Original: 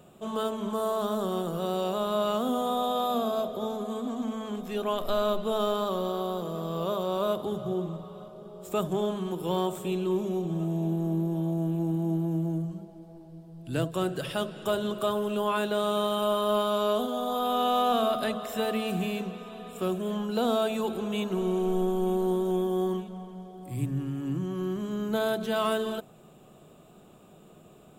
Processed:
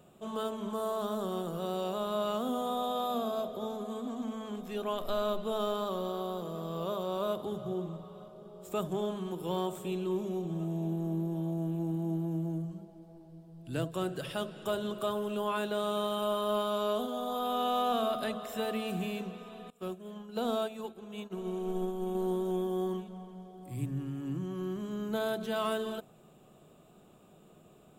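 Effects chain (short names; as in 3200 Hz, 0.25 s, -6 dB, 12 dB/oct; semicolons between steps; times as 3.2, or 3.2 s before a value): 19.7–22.15 upward expander 2.5:1, over -38 dBFS; gain -5 dB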